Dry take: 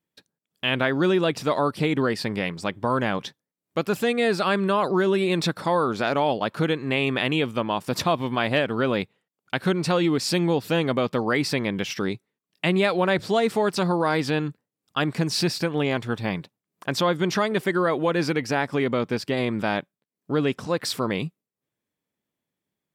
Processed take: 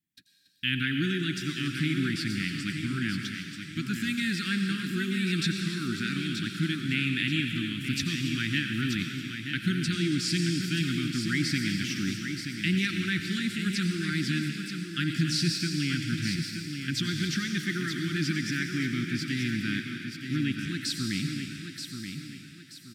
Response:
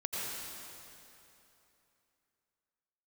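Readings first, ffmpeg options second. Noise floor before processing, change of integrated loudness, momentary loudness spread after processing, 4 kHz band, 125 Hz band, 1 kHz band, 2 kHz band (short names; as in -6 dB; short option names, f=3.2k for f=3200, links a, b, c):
under -85 dBFS, -5.5 dB, 7 LU, -1.0 dB, -1.0 dB, -18.5 dB, -2.5 dB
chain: -filter_complex "[0:a]asuperstop=centerf=690:order=12:qfactor=0.6,asplit=2[a][b];[b]aecho=0:1:929|1858|2787|3716:0.422|0.148|0.0517|0.0181[c];[a][c]amix=inputs=2:normalize=0,acrossover=split=9400[d][e];[e]acompressor=threshold=-53dB:ratio=4:attack=1:release=60[f];[d][f]amix=inputs=2:normalize=0,lowshelf=f=240:g=5,aecho=1:1:281:0.224,asplit=2[g][h];[1:a]atrim=start_sample=2205,lowshelf=f=400:g=-9.5,highshelf=f=4.3k:g=10.5[i];[h][i]afir=irnorm=-1:irlink=0,volume=-8dB[j];[g][j]amix=inputs=2:normalize=0,volume=-6.5dB"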